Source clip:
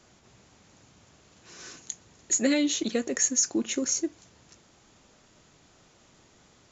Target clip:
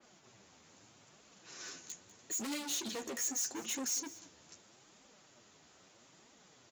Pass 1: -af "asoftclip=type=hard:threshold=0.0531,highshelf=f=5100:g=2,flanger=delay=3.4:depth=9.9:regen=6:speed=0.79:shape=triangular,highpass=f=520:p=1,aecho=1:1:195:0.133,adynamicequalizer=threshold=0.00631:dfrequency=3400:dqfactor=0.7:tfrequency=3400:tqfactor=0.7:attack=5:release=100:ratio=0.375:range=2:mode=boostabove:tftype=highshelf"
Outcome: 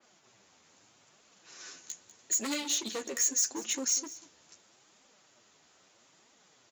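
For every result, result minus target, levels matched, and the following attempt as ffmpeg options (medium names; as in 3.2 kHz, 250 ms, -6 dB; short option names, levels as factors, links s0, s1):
250 Hz band -4.5 dB; hard clipper: distortion -5 dB
-af "asoftclip=type=hard:threshold=0.0531,highshelf=f=5100:g=2,flanger=delay=3.4:depth=9.9:regen=6:speed=0.79:shape=triangular,highpass=f=220:p=1,aecho=1:1:195:0.133,adynamicequalizer=threshold=0.00631:dfrequency=3400:dqfactor=0.7:tfrequency=3400:tqfactor=0.7:attack=5:release=100:ratio=0.375:range=2:mode=boostabove:tftype=highshelf"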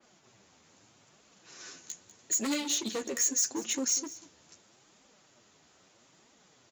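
hard clipper: distortion -5 dB
-af "asoftclip=type=hard:threshold=0.0178,highshelf=f=5100:g=2,flanger=delay=3.4:depth=9.9:regen=6:speed=0.79:shape=triangular,highpass=f=220:p=1,aecho=1:1:195:0.133,adynamicequalizer=threshold=0.00631:dfrequency=3400:dqfactor=0.7:tfrequency=3400:tqfactor=0.7:attack=5:release=100:ratio=0.375:range=2:mode=boostabove:tftype=highshelf"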